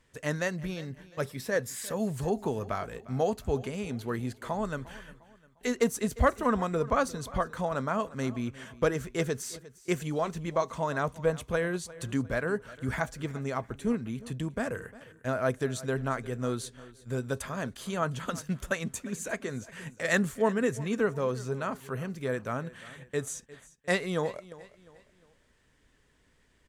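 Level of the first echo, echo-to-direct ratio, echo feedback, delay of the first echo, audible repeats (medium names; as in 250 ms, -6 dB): -19.0 dB, -18.5 dB, 39%, 353 ms, 2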